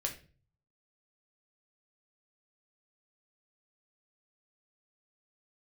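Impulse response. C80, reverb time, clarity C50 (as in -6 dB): 16.0 dB, 0.40 s, 11.0 dB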